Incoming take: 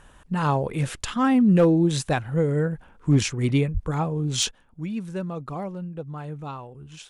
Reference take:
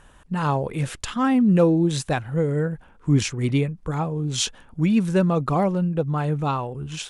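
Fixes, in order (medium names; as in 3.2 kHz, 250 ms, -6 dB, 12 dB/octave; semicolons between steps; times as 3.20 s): clip repair -11 dBFS; de-plosive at 3.73 s; gain correction +11 dB, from 4.51 s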